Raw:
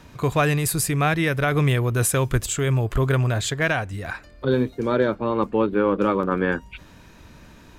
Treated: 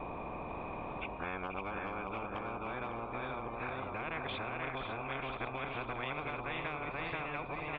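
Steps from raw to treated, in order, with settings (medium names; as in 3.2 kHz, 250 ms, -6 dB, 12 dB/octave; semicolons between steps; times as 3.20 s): reverse the whole clip; cascade formant filter a; delay 483 ms -4 dB; compression 3:1, threshold -48 dBFS, peak gain reduction 18 dB; high-order bell 1.3 kHz -11.5 dB 1.1 oct; feedback delay 552 ms, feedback 49%, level -10 dB; spectrum-flattening compressor 10:1; trim +10 dB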